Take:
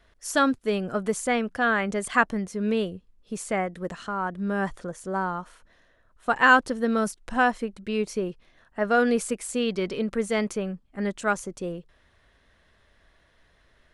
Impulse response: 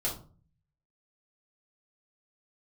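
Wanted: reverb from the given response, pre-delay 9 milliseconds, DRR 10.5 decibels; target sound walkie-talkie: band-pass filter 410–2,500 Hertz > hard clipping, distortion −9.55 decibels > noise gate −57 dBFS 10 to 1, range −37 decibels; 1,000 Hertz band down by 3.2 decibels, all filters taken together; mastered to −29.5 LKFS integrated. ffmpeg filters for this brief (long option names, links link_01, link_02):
-filter_complex "[0:a]equalizer=frequency=1000:width_type=o:gain=-4,asplit=2[link_01][link_02];[1:a]atrim=start_sample=2205,adelay=9[link_03];[link_02][link_03]afir=irnorm=-1:irlink=0,volume=-15.5dB[link_04];[link_01][link_04]amix=inputs=2:normalize=0,highpass=410,lowpass=2500,asoftclip=type=hard:threshold=-20dB,agate=range=-37dB:threshold=-57dB:ratio=10,volume=1.5dB"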